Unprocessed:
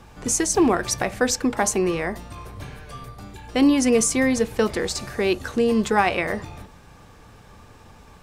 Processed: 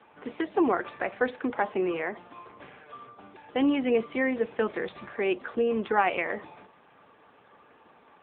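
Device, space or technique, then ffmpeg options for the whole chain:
telephone: -filter_complex "[0:a]asettb=1/sr,asplit=3[s0][s1][s2];[s0]atrim=end=4.314[s3];[s1]atrim=start=4.31:end=5.08,asetpts=PTS-STARTPTS,afade=t=in:d=0.004:c=qsin,afade=t=out:st=0.766:d=0.004:c=qsin,asubboost=boost=8.5:cutoff=240[s4];[s2]atrim=start=5.076[s5];[s3][s4]acrossfade=d=0.004:c1=hsin:c2=qsin[s6];[s6][s5]acrossfade=d=0.004:c1=qsin:c2=hsin,highpass=310,lowpass=3500,volume=0.668" -ar 8000 -c:a libopencore_amrnb -b:a 7950

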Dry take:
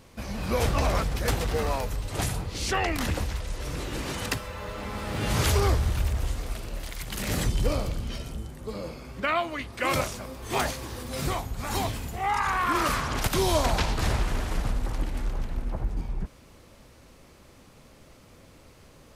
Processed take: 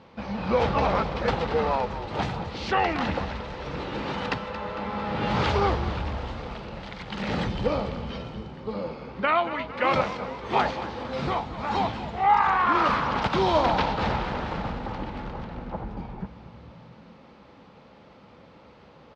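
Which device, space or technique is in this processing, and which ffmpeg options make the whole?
frequency-shifting delay pedal into a guitar cabinet: -filter_complex "[0:a]asplit=7[s0][s1][s2][s3][s4][s5][s6];[s1]adelay=226,afreqshift=-52,volume=0.237[s7];[s2]adelay=452,afreqshift=-104,volume=0.135[s8];[s3]adelay=678,afreqshift=-156,volume=0.0767[s9];[s4]adelay=904,afreqshift=-208,volume=0.0442[s10];[s5]adelay=1130,afreqshift=-260,volume=0.0251[s11];[s6]adelay=1356,afreqshift=-312,volume=0.0143[s12];[s0][s7][s8][s9][s10][s11][s12]amix=inputs=7:normalize=0,highpass=78,equalizer=f=98:t=q:w=4:g=-5,equalizer=f=200:t=q:w=4:g=6,equalizer=f=500:t=q:w=4:g=5,equalizer=f=860:t=q:w=4:g=9,equalizer=f=1300:t=q:w=4:g=4,lowpass=f=4200:w=0.5412,lowpass=f=4200:w=1.3066"

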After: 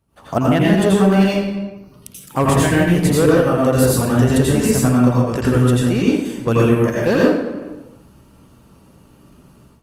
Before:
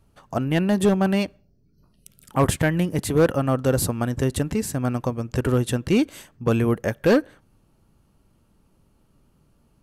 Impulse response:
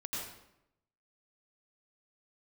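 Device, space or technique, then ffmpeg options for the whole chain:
far-field microphone of a smart speaker: -filter_complex "[1:a]atrim=start_sample=2205[s0];[0:a][s0]afir=irnorm=-1:irlink=0,highpass=f=99:p=1,dynaudnorm=f=120:g=3:m=5.96,volume=0.841" -ar 48000 -c:a libopus -b:a 32k

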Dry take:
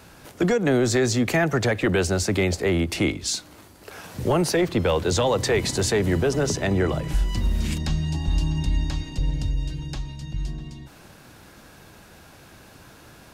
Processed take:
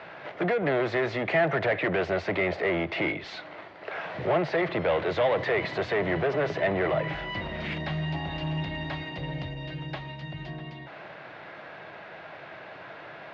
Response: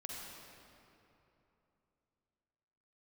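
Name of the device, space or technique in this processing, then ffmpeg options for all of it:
overdrive pedal into a guitar cabinet: -filter_complex "[0:a]asplit=2[s0][s1];[s1]highpass=f=720:p=1,volume=12.6,asoftclip=type=tanh:threshold=0.224[s2];[s0][s2]amix=inputs=2:normalize=0,lowpass=f=1800:p=1,volume=0.501,highpass=98,equalizer=f=150:t=q:w=4:g=4,equalizer=f=240:t=q:w=4:g=-8,equalizer=f=640:t=q:w=4:g=8,equalizer=f=2000:t=q:w=4:g=7,lowpass=f=3700:w=0.5412,lowpass=f=3700:w=1.3066,volume=0.422"

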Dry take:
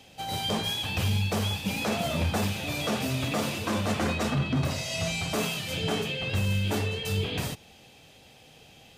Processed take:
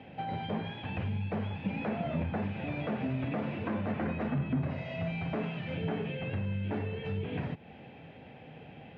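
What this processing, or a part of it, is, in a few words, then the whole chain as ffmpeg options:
bass amplifier: -af "acompressor=threshold=0.01:ratio=3,highpass=76,equalizer=f=160:t=q:w=4:g=5,equalizer=f=250:t=q:w=4:g=4,equalizer=f=1200:t=q:w=4:g=-6,lowpass=f=2200:w=0.5412,lowpass=f=2200:w=1.3066,volume=1.88"

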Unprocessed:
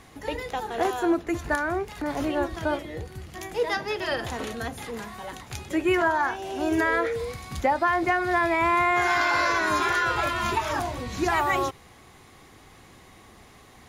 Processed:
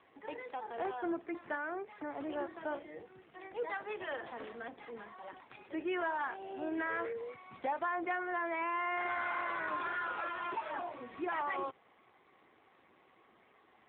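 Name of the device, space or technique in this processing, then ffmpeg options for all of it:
telephone: -af "highpass=300,lowpass=3000,asoftclip=type=tanh:threshold=0.112,volume=0.355" -ar 8000 -c:a libopencore_amrnb -b:a 7400

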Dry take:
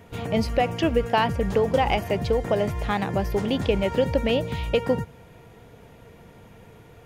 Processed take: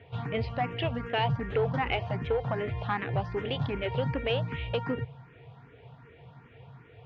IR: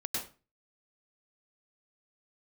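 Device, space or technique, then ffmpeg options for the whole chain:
barber-pole phaser into a guitar amplifier: -filter_complex "[0:a]asplit=2[s0][s1];[s1]afreqshift=2.6[s2];[s0][s2]amix=inputs=2:normalize=1,asoftclip=type=tanh:threshold=0.133,highpass=88,equalizer=f=130:t=q:w=4:g=10,equalizer=f=200:t=q:w=4:g=-10,equalizer=f=330:t=q:w=4:g=-7,equalizer=f=570:t=q:w=4:g=-6,lowpass=f=3500:w=0.5412,lowpass=f=3500:w=1.3066"

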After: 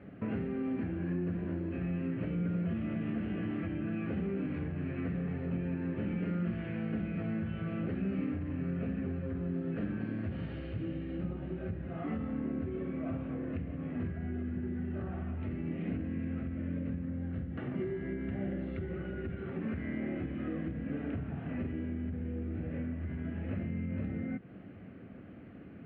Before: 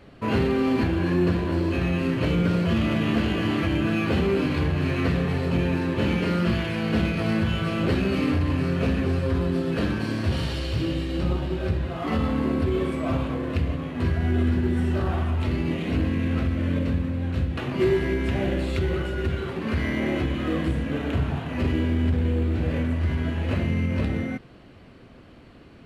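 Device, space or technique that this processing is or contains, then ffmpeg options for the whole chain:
bass amplifier: -filter_complex "[0:a]acompressor=threshold=0.02:ratio=4,highpass=73,equalizer=f=100:t=q:w=4:g=4,equalizer=f=190:t=q:w=4:g=9,equalizer=f=280:t=q:w=4:g=4,equalizer=f=1000:t=q:w=4:g=-10,lowpass=f=2300:w=0.5412,lowpass=f=2300:w=1.3066,asettb=1/sr,asplit=3[s0][s1][s2];[s0]atrim=end=17.054[s3];[s1]atrim=start=17.05:end=18.9,asetpts=PTS-STARTPTS,afade=t=in:d=0.004:c=qsin,afade=t=out:st=1.846:d=0.004:c=qsin,bandreject=f=2500:w=9.5[s4];[s2]atrim=start=18.896[s5];[s3][s4]acrossfade=d=0.004:c1=hsin:c2=qsin[s6];[s6][s5]acrossfade=d=0.004:c1=qsin:c2=hsin,volume=0.668"

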